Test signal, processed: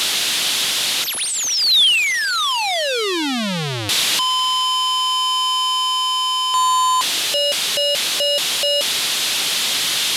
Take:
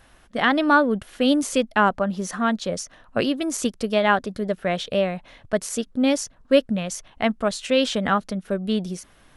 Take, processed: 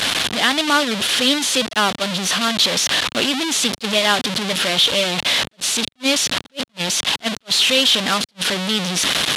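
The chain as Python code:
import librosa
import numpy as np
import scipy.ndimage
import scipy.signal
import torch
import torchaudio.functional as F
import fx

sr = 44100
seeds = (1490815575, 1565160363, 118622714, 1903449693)

y = fx.delta_mod(x, sr, bps=64000, step_db=-16.0)
y = fx.peak_eq(y, sr, hz=3500.0, db=13.0, octaves=1.2)
y = fx.rider(y, sr, range_db=3, speed_s=2.0)
y = scipy.signal.sosfilt(scipy.signal.butter(2, 140.0, 'highpass', fs=sr, output='sos'), y)
y = fx.attack_slew(y, sr, db_per_s=540.0)
y = F.gain(torch.from_numpy(y), -2.0).numpy()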